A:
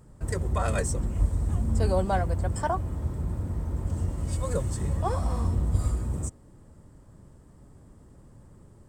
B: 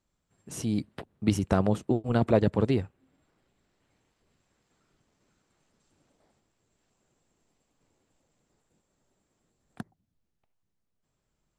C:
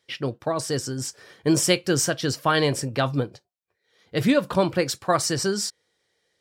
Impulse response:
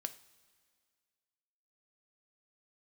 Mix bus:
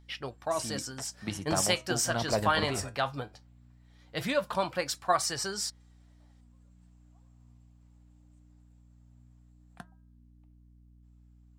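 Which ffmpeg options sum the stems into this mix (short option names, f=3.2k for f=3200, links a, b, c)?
-filter_complex "[0:a]acompressor=threshold=-34dB:ratio=10,adelay=2100,volume=2.5dB[a];[1:a]bandreject=f=320:t=h:w=4,bandreject=f=640:t=h:w=4,bandreject=f=960:t=h:w=4,bandreject=f=1.28k:t=h:w=4,bandreject=f=1.6k:t=h:w=4,aeval=exprs='val(0)+0.00562*(sin(2*PI*60*n/s)+sin(2*PI*2*60*n/s)/2+sin(2*PI*3*60*n/s)/3+sin(2*PI*4*60*n/s)/4+sin(2*PI*5*60*n/s)/5)':c=same,volume=1.5dB,asplit=2[b][c];[2:a]volume=-1dB[d];[c]apad=whole_len=484614[e];[a][e]sidechaingate=range=-33dB:threshold=-32dB:ratio=16:detection=peak[f];[f][b][d]amix=inputs=3:normalize=0,lowshelf=f=550:t=q:w=1.5:g=-7.5,flanger=delay=2.3:depth=7.7:regen=72:speed=0.18:shape=sinusoidal"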